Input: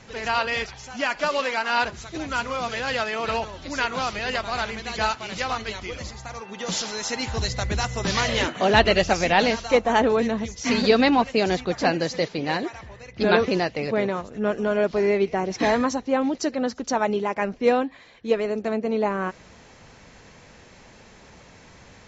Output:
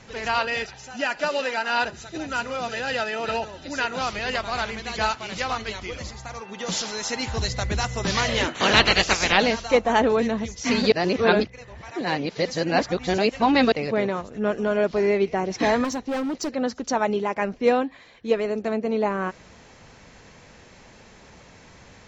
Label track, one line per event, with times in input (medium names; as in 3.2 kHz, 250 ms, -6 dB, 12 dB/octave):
0.450000	4.010000	comb of notches 1.1 kHz
8.540000	9.360000	spectral peaks clipped ceiling under each frame's peak by 20 dB
10.920000	13.720000	reverse
15.840000	16.510000	hard clipper -23.5 dBFS